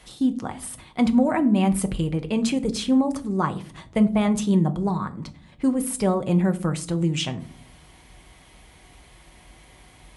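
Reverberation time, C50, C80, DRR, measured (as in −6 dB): 0.45 s, 17.0 dB, 22.0 dB, 6.5 dB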